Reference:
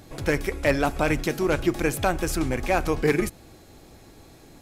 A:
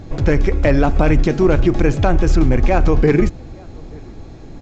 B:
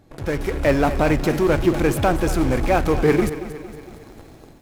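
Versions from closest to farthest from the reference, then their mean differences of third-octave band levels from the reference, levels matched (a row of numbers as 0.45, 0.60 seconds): B, A; 4.0, 6.5 decibels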